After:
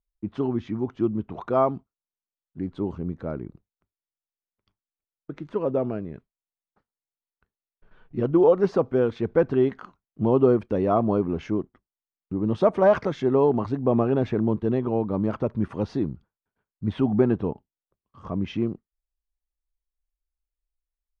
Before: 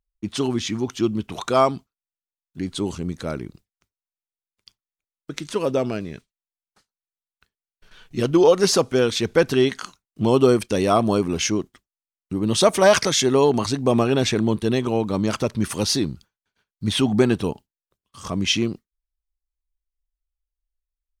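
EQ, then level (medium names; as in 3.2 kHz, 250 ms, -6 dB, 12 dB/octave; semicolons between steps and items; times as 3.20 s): low-pass 1.1 kHz 12 dB/octave; -2.5 dB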